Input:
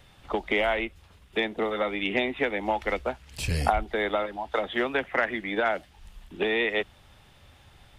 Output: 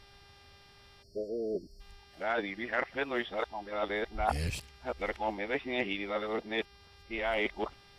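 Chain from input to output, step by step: whole clip reversed; buzz 400 Hz, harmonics 14, -54 dBFS -1 dB/oct; spectral delete 1.03–1.8, 690–4200 Hz; gain -6.5 dB

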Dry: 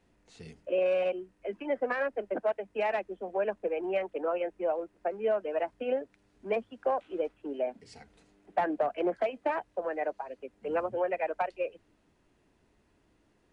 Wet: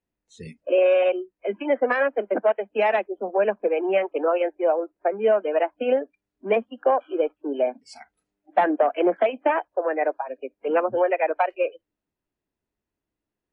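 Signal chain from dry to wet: spectral noise reduction 27 dB; gain +9 dB

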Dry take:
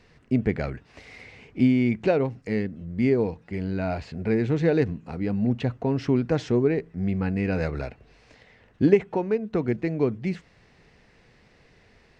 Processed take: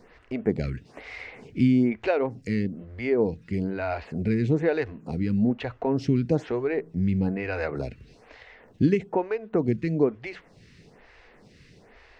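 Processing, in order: in parallel at +2 dB: compressor, threshold -33 dBFS, peak gain reduction 19.5 dB; on the sum: photocell phaser 1.1 Hz

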